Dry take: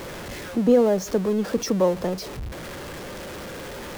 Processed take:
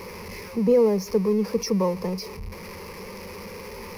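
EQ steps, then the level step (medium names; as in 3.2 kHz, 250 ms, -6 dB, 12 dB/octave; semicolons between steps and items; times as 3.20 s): rippled EQ curve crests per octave 0.85, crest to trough 14 dB; -5.0 dB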